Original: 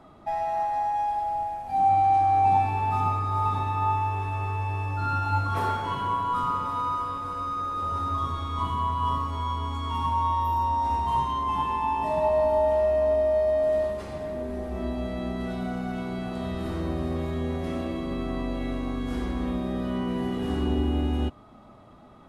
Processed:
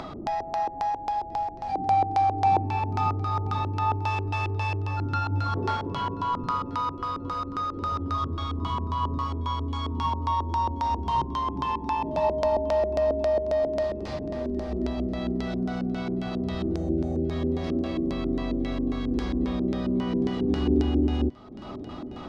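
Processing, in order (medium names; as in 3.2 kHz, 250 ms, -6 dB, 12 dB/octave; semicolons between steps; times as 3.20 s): 4.01–4.77 s: treble shelf 2.2 kHz +11.5 dB; 16.75–17.30 s: time-frequency box 840–5800 Hz -19 dB; LFO low-pass square 3.7 Hz 350–5000 Hz; thinning echo 1033 ms, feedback 16%, level -23.5 dB; upward compressor, threshold -26 dBFS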